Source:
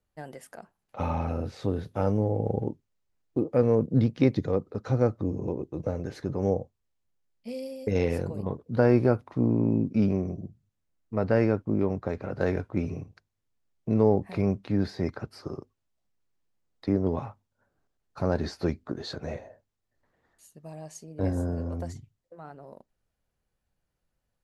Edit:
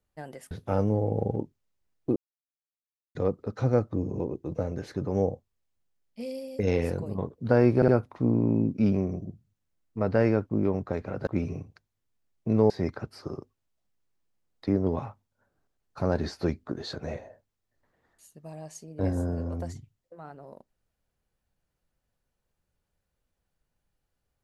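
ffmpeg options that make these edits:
-filter_complex "[0:a]asplit=8[s0][s1][s2][s3][s4][s5][s6][s7];[s0]atrim=end=0.512[s8];[s1]atrim=start=1.788:end=3.44,asetpts=PTS-STARTPTS,afade=t=out:st=1.648:d=0.004:c=hsin[s9];[s2]atrim=start=3.44:end=4.43,asetpts=PTS-STARTPTS,volume=0[s10];[s3]atrim=start=4.43:end=9.102,asetpts=PTS-STARTPTS,afade=t=in:d=0.004:c=hsin[s11];[s4]atrim=start=9.038:end=9.102[s12];[s5]atrim=start=9.038:end=12.432[s13];[s6]atrim=start=12.678:end=14.112[s14];[s7]atrim=start=14.898[s15];[s9][s10][s11]concat=n=3:v=0:a=1[s16];[s8][s16]acrossfade=d=0.004:c1=hsin:c2=hsin[s17];[s17][s12]acrossfade=d=0.004:c1=hsin:c2=hsin[s18];[s18][s13]acrossfade=d=0.004:c1=hsin:c2=hsin[s19];[s19][s14]acrossfade=d=0.004:c1=hsin:c2=hsin[s20];[s20][s15]acrossfade=d=0.004:c1=hsin:c2=hsin"

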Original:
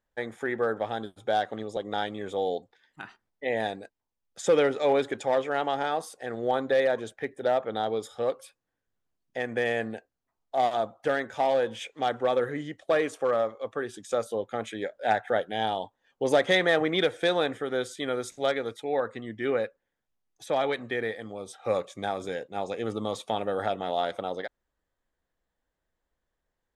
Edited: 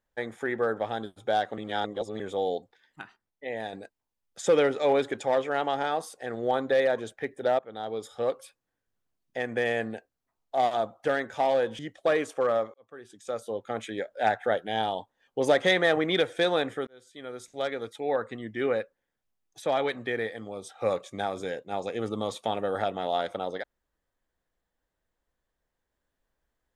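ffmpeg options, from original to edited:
-filter_complex "[0:a]asplit=9[s0][s1][s2][s3][s4][s5][s6][s7][s8];[s0]atrim=end=1.582[s9];[s1]atrim=start=1.578:end=2.202,asetpts=PTS-STARTPTS,areverse[s10];[s2]atrim=start=2.198:end=3.032[s11];[s3]atrim=start=3.028:end=3.732,asetpts=PTS-STARTPTS,volume=0.501[s12];[s4]atrim=start=3.728:end=7.59,asetpts=PTS-STARTPTS,afade=t=out:st=3.858:d=0.004:c=hsin:silence=0.16788[s13];[s5]atrim=start=7.59:end=11.792,asetpts=PTS-STARTPTS,afade=t=in:d=0.64:silence=0.16788[s14];[s6]atrim=start=12.628:end=13.58,asetpts=PTS-STARTPTS,afade=t=out:st=0.948:d=0.004:c=hsin[s15];[s7]atrim=start=13.58:end=17.71,asetpts=PTS-STARTPTS,afade=t=in:d=1.08,afade=t=out:st=4.126:d=0.004:c=hsin[s16];[s8]atrim=start=17.71,asetpts=PTS-STARTPTS,afade=t=in:d=1.26[s17];[s9][s10]acrossfade=d=0.004:c1=hsin:c2=hsin[s18];[s18][s11]acrossfade=d=0.004:c1=hsin:c2=hsin[s19];[s19][s12]acrossfade=d=0.004:c1=hsin:c2=hsin[s20];[s13][s14]concat=n=2:v=0:a=1[s21];[s20][s21]acrossfade=d=0.004:c1=hsin:c2=hsin[s22];[s15][s16][s17]concat=n=3:v=0:a=1[s23];[s22][s23]acrossfade=d=0.004:c1=hsin:c2=hsin"

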